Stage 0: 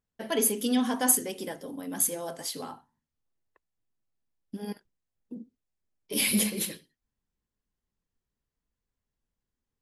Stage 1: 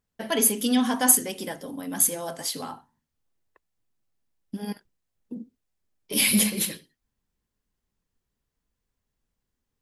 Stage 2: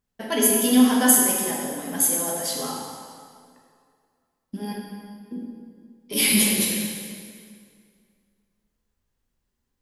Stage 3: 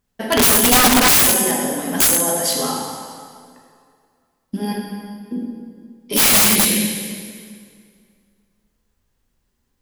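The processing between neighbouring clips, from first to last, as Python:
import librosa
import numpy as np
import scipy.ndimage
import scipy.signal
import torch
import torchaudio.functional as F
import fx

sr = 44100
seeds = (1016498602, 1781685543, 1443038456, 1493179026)

y1 = fx.dynamic_eq(x, sr, hz=410.0, q=1.5, threshold_db=-45.0, ratio=4.0, max_db=-5)
y1 = F.gain(torch.from_numpy(y1), 5.0).numpy()
y2 = fx.rev_plate(y1, sr, seeds[0], rt60_s=2.2, hf_ratio=0.8, predelay_ms=0, drr_db=-2.5)
y2 = F.gain(torch.from_numpy(y2), -1.0).numpy()
y3 = (np.mod(10.0 ** (15.0 / 20.0) * y2 + 1.0, 2.0) - 1.0) / 10.0 ** (15.0 / 20.0)
y3 = F.gain(torch.from_numpy(y3), 8.0).numpy()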